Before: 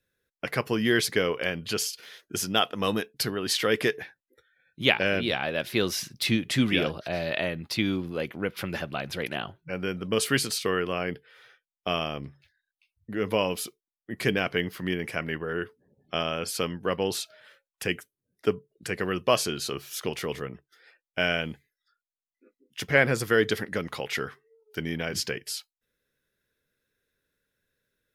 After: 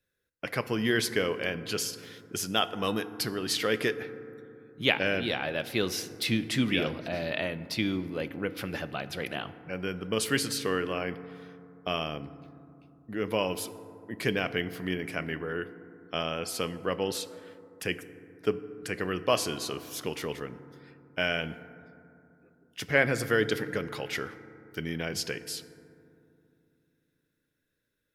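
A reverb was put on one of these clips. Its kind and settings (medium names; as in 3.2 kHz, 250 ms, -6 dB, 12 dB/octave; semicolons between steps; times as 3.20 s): FDN reverb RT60 2.7 s, low-frequency decay 1.4×, high-frequency decay 0.3×, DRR 12.5 dB; trim -3 dB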